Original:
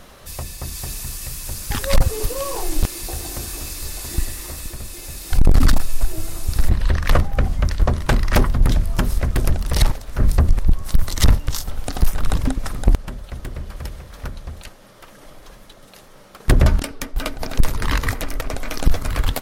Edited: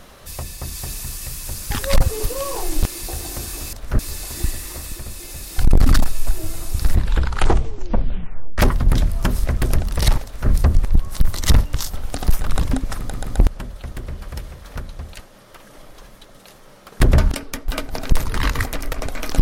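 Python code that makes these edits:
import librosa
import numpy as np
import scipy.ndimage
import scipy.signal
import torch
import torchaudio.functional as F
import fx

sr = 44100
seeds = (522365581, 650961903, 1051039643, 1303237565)

y = fx.edit(x, sr, fx.tape_stop(start_s=6.71, length_s=1.61),
    fx.duplicate(start_s=9.98, length_s=0.26, to_s=3.73),
    fx.stutter(start_s=12.73, slice_s=0.13, count=3), tone=tone)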